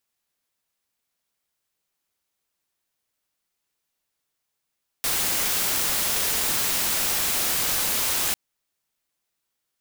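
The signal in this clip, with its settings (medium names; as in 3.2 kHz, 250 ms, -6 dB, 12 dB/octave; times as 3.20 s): noise white, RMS -24 dBFS 3.30 s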